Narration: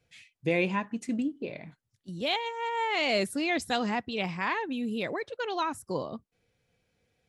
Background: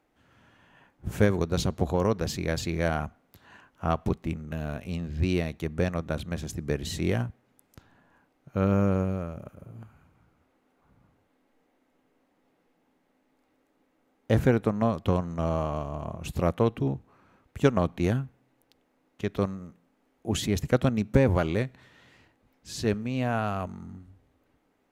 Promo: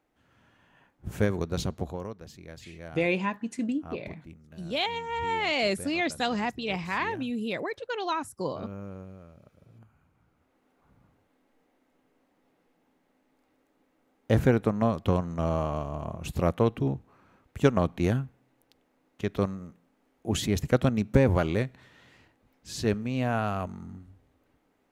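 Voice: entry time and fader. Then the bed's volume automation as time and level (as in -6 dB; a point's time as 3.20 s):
2.50 s, +0.5 dB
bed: 1.72 s -3.5 dB
2.19 s -16.5 dB
9.18 s -16.5 dB
10.64 s 0 dB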